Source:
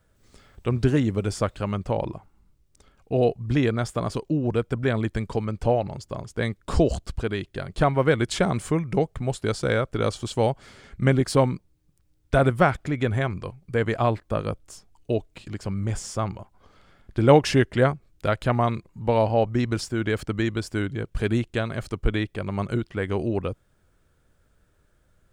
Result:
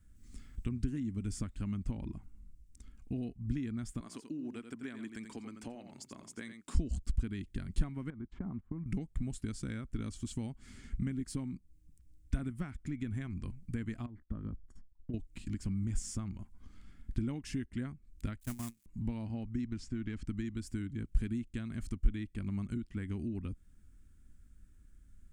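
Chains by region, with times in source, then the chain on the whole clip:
0:04.00–0:06.75: high-pass filter 400 Hz + single-tap delay 86 ms −10 dB
0:08.10–0:08.86: noise gate −30 dBFS, range −24 dB + downward compressor 2.5 to 1, threshold −32 dBFS + low-pass with resonance 980 Hz, resonance Q 1.7
0:14.06–0:15.14: Savitzky-Golay smoothing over 41 samples + downward compressor 5 to 1, threshold −31 dBFS + noise gate −53 dBFS, range −19 dB
0:18.40–0:18.86: spike at every zero crossing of −13.5 dBFS + noise gate −22 dBFS, range −32 dB
0:19.67–0:20.27: gain on one half-wave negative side −3 dB + low-pass filter 5,300 Hz
whole clip: octave-band graphic EQ 125/250/500/1,000/2,000/4,000/8,000 Hz −8/+11/−12/+6/+4/−4/+6 dB; downward compressor 4 to 1, threshold −33 dBFS; guitar amp tone stack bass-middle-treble 10-0-1; level +14 dB

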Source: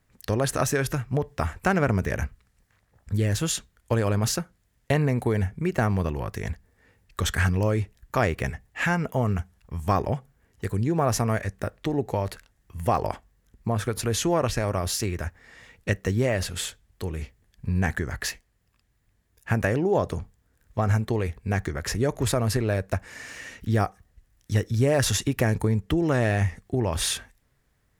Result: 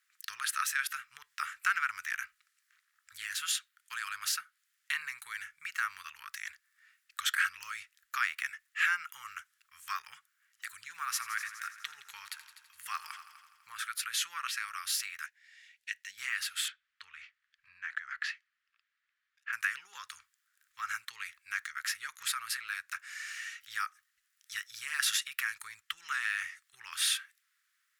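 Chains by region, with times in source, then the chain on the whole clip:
0:10.67–0:13.79: de-essing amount 25% + echo machine with several playback heads 83 ms, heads all three, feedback 46%, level −17 dB
0:15.26–0:16.18: low-pass filter 3,500 Hz 6 dB per octave + phaser with its sweep stopped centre 330 Hz, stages 6
0:16.68–0:19.53: low-pass filter 3,100 Hz + downward compressor 5 to 1, threshold −26 dBFS
whole clip: elliptic high-pass filter 1,300 Hz, stop band 50 dB; dynamic equaliser 6,500 Hz, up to −6 dB, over −47 dBFS, Q 1.6

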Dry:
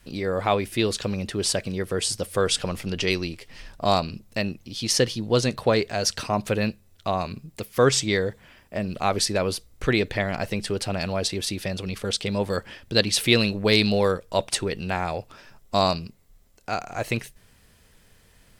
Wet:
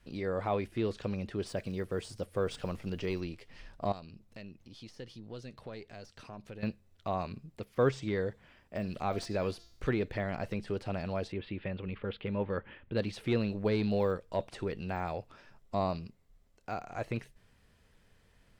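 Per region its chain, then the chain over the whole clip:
0:01.46–0:03.21: one scale factor per block 7 bits + high-shelf EQ 6,400 Hz +9 dB
0:03.92–0:06.63: gain on one half-wave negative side −3 dB + dynamic equaliser 870 Hz, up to −4 dB, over −36 dBFS, Q 0.72 + downward compressor 2 to 1, threshold −43 dBFS
0:08.75–0:09.91: high-shelf EQ 2,400 Hz +8.5 dB + hum removal 341.9 Hz, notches 20
0:11.32–0:12.97: inverse Chebyshev low-pass filter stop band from 5,800 Hz + notch filter 690 Hz, Q 6.2
whole clip: de-essing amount 100%; low-pass filter 3,100 Hz 6 dB per octave; level −7.5 dB

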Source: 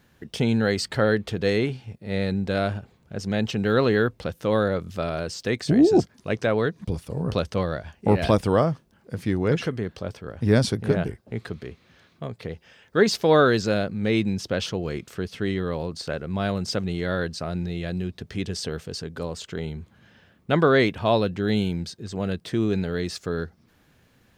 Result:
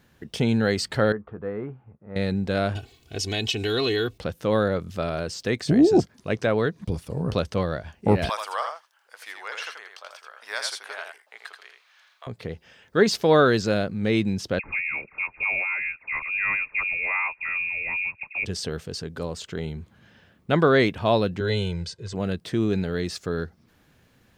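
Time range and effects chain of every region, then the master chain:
0:01.12–0:02.16: transistor ladder low-pass 1,400 Hz, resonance 55% + double-tracking delay 14 ms −12.5 dB
0:02.75–0:04.18: high shelf with overshoot 2,100 Hz +9.5 dB, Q 1.5 + comb filter 2.7 ms, depth 83% + downward compressor 2 to 1, threshold −25 dBFS
0:08.29–0:12.27: high-pass filter 860 Hz 24 dB per octave + single-tap delay 82 ms −5.5 dB
0:14.59–0:18.45: all-pass dispersion highs, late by 56 ms, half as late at 790 Hz + voice inversion scrambler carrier 2,600 Hz
0:21.40–0:22.14: low-pass filter 8,400 Hz + parametric band 280 Hz −8 dB 0.71 octaves + comb filter 2 ms, depth 72%
whole clip: no processing

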